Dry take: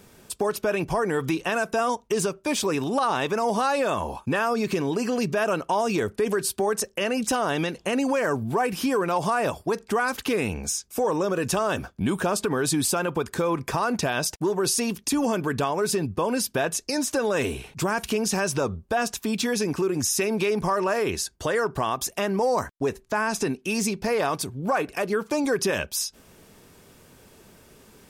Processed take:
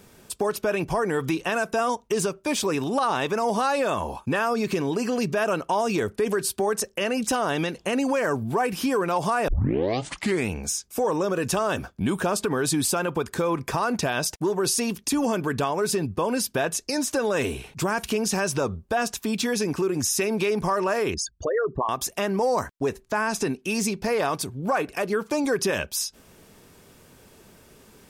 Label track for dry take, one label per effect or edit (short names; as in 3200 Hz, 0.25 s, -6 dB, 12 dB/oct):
9.480000	9.480000	tape start 1.00 s
21.140000	21.890000	formant sharpening exponent 3